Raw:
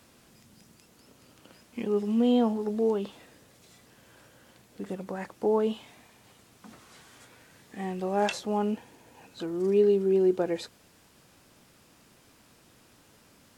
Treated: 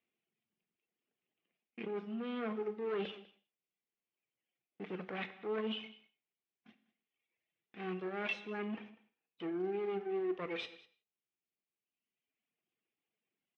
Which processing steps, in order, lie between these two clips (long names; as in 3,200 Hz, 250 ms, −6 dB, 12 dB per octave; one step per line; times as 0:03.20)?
lower of the sound and its delayed copy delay 0.34 ms
noise gate −46 dBFS, range −34 dB
reverb reduction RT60 1.5 s
reversed playback
downward compressor 16 to 1, threshold −39 dBFS, peak gain reduction 20.5 dB
reversed playback
transient designer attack −6 dB, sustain −1 dB
hard clipping −39.5 dBFS, distortion −17 dB
loudspeaker in its box 280–3,100 Hz, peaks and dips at 290 Hz −6 dB, 550 Hz −9 dB, 930 Hz −8 dB, 2,200 Hz +3 dB
on a send: single-tap delay 197 ms −19.5 dB
on the sum: reverb whose tail is shaped and stops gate 200 ms falling, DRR 10 dB
level +10.5 dB